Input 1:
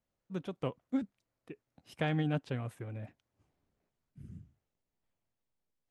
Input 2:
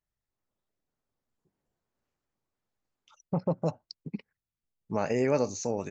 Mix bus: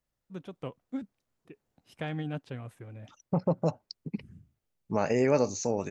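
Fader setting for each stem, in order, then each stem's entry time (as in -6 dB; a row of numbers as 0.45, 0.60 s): -3.0, +1.5 dB; 0.00, 0.00 s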